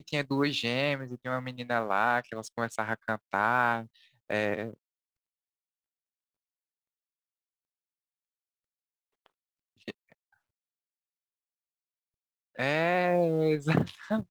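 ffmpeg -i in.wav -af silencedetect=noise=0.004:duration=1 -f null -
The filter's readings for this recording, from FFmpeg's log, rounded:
silence_start: 4.74
silence_end: 9.26 | silence_duration: 4.52
silence_start: 10.12
silence_end: 12.56 | silence_duration: 2.43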